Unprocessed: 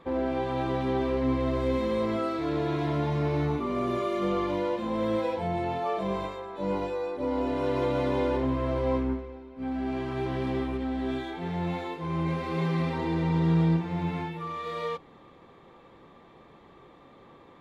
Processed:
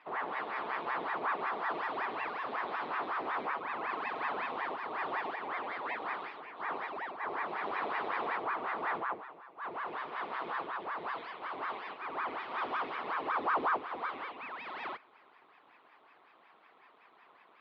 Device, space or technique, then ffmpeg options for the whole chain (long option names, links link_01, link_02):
voice changer toy: -af "aeval=exprs='val(0)*sin(2*PI*760*n/s+760*0.9/5.4*sin(2*PI*5.4*n/s))':channel_layout=same,highpass=450,equalizer=frequency=560:width_type=q:width=4:gain=-6,equalizer=frequency=1100:width_type=q:width=4:gain=3,equalizer=frequency=1600:width_type=q:width=4:gain=-4,lowpass=frequency=3900:width=0.5412,lowpass=frequency=3900:width=1.3066,volume=-3.5dB"